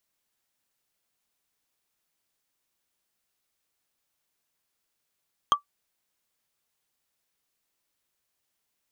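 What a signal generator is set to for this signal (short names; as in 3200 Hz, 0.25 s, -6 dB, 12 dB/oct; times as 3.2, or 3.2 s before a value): wood hit, lowest mode 1160 Hz, decay 0.11 s, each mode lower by 7 dB, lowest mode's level -11.5 dB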